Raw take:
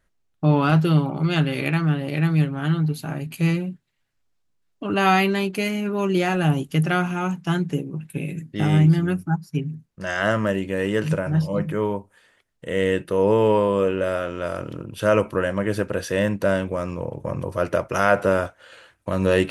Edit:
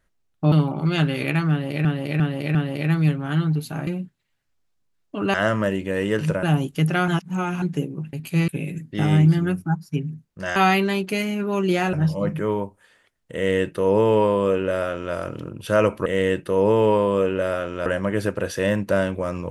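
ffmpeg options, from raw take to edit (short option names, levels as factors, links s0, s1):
-filter_complex "[0:a]asplit=16[s0][s1][s2][s3][s4][s5][s6][s7][s8][s9][s10][s11][s12][s13][s14][s15];[s0]atrim=end=0.522[s16];[s1]atrim=start=0.898:end=2.232[s17];[s2]atrim=start=1.878:end=2.232[s18];[s3]atrim=start=1.878:end=2.232[s19];[s4]atrim=start=1.878:end=3.202[s20];[s5]atrim=start=3.548:end=5.022[s21];[s6]atrim=start=10.168:end=11.262[s22];[s7]atrim=start=6.388:end=7.042[s23];[s8]atrim=start=7.038:end=7.582,asetpts=PTS-STARTPTS,areverse[s24];[s9]atrim=start=7.578:end=8.092[s25];[s10]atrim=start=3.198:end=3.552[s26];[s11]atrim=start=8.088:end=10.172[s27];[s12]atrim=start=5.018:end=6.392[s28];[s13]atrim=start=11.258:end=15.392[s29];[s14]atrim=start=12.678:end=14.482[s30];[s15]atrim=start=15.388[s31];[s16][s17]acrossfade=d=0.004:c1=hsin:c2=hsin[s32];[s32][s18]acrossfade=d=0.004:c1=hsin:c2=hsin[s33];[s33][s19]acrossfade=d=0.004:c1=hsin:c2=hsin[s34];[s34][s20]acrossfade=d=0.004:c1=hsin:c2=hsin[s35];[s35][s21]acrossfade=d=0.004:c1=hsin:c2=hsin[s36];[s36][s22]acrossfade=d=0.004:c1=hsin:c2=hsin[s37];[s37][s23]acrossfade=d=0.004:c1=hsin:c2=hsin[s38];[s38][s24]acrossfade=d=0.004:c1=hsin:c2=hsin[s39];[s39][s25]acrossfade=d=0.004:c1=hsin:c2=hsin[s40];[s40][s26]acrossfade=d=0.004:c1=hsin:c2=hsin[s41];[s41][s27]acrossfade=d=0.004:c1=hsin:c2=hsin[s42];[s42][s28]acrossfade=d=0.004:c1=hsin:c2=hsin[s43];[s43][s29]acrossfade=d=0.004:c1=hsin:c2=hsin[s44];[s44][s30]acrossfade=d=0.004:c1=hsin:c2=hsin[s45];[s45][s31]acrossfade=d=0.004:c1=hsin:c2=hsin"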